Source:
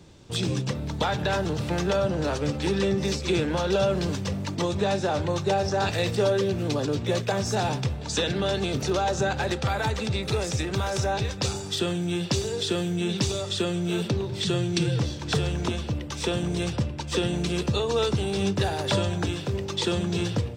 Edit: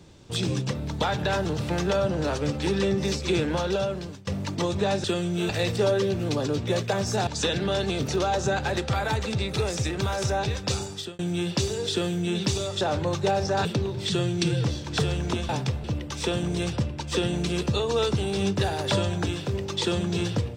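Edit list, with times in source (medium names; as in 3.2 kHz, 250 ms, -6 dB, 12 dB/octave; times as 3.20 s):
3.55–4.27 s: fade out, to -22 dB
5.04–5.88 s: swap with 13.55–14.00 s
7.66–8.01 s: move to 15.84 s
11.57–11.93 s: fade out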